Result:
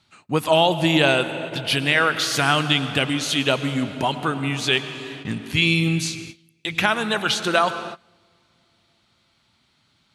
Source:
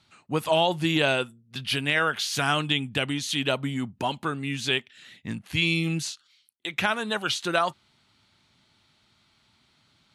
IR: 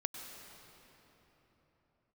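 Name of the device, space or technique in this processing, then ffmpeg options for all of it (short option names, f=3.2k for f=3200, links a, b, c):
keyed gated reverb: -filter_complex "[0:a]asplit=3[a][b][c];[1:a]atrim=start_sample=2205[d];[b][d]afir=irnorm=-1:irlink=0[e];[c]apad=whole_len=447373[f];[e][f]sidechaingate=range=-25dB:threshold=-56dB:ratio=16:detection=peak,volume=-0.5dB[g];[a][g]amix=inputs=2:normalize=0"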